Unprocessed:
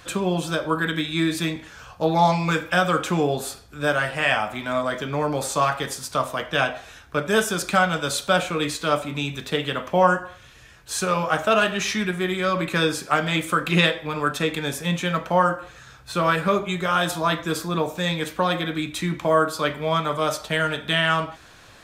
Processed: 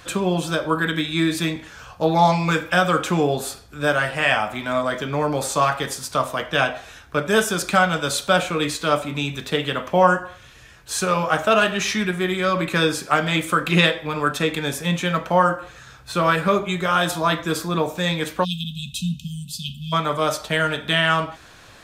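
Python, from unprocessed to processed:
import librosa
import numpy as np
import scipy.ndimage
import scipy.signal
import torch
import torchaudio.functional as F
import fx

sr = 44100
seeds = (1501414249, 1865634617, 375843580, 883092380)

y = fx.spec_erase(x, sr, start_s=18.44, length_s=1.49, low_hz=250.0, high_hz=2500.0)
y = y * 10.0 ** (2.0 / 20.0)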